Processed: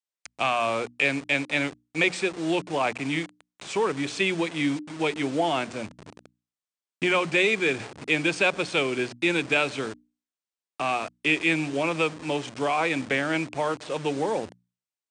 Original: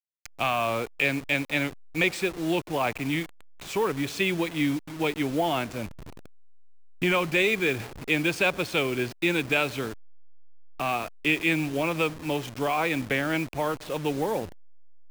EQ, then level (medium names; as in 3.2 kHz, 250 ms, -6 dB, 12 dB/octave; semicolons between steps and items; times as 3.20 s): Bessel high-pass 160 Hz, order 2; brick-wall FIR low-pass 9.5 kHz; hum notches 60/120/180/240/300 Hz; +1.5 dB